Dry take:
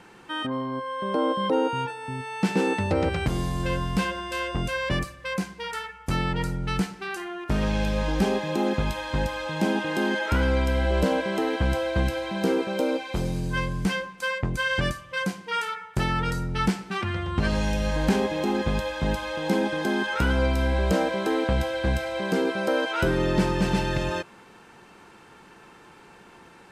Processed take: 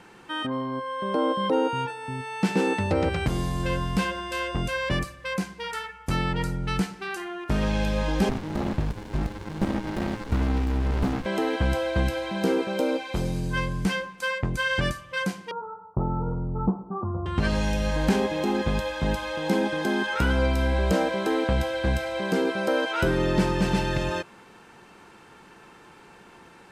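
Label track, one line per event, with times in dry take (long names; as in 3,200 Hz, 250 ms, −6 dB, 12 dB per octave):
8.290000	11.260000	windowed peak hold over 65 samples
15.510000	17.260000	Butterworth low-pass 1,200 Hz 72 dB per octave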